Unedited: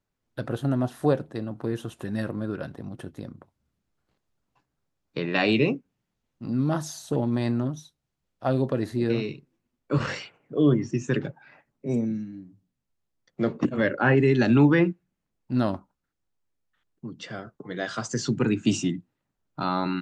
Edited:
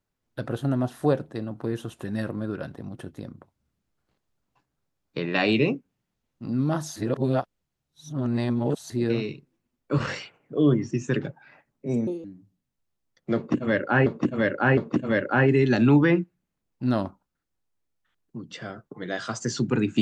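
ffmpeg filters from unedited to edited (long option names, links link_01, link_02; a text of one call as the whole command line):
ffmpeg -i in.wav -filter_complex "[0:a]asplit=7[link_01][link_02][link_03][link_04][link_05][link_06][link_07];[link_01]atrim=end=6.962[link_08];[link_02]atrim=start=6.958:end=8.902,asetpts=PTS-STARTPTS,areverse[link_09];[link_03]atrim=start=8.898:end=12.074[link_10];[link_04]atrim=start=12.07:end=12.35,asetpts=PTS-STARTPTS,asetrate=71442,aresample=44100,atrim=end_sample=7622,asetpts=PTS-STARTPTS[link_11];[link_05]atrim=start=12.346:end=14.172[link_12];[link_06]atrim=start=13.458:end=14.172[link_13];[link_07]atrim=start=13.458[link_14];[link_08][link_09]acrossfade=duration=0.004:curve1=hsin:curve2=hsin[link_15];[link_15][link_10]acrossfade=duration=0.004:curve1=hsin:curve2=hsin[link_16];[link_16][link_11]acrossfade=duration=0.004:curve1=hsin:curve2=hsin[link_17];[link_17][link_12]acrossfade=duration=0.004:curve1=hsin:curve2=hsin[link_18];[link_18][link_13]acrossfade=duration=0.004:curve1=hsin:curve2=hsin[link_19];[link_19][link_14]acrossfade=duration=0.004:curve1=hsin:curve2=hsin" out.wav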